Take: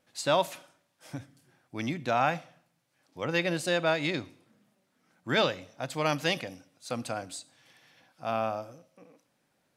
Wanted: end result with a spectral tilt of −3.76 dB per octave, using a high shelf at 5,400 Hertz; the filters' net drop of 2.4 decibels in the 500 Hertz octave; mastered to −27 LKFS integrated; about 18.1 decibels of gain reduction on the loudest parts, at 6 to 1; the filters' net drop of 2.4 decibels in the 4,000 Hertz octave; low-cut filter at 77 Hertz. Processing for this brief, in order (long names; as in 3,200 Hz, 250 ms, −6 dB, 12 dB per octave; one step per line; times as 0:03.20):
high-pass filter 77 Hz
parametric band 500 Hz −3 dB
parametric band 4,000 Hz −4 dB
high-shelf EQ 5,400 Hz +3 dB
downward compressor 6 to 1, threshold −42 dBFS
level +19.5 dB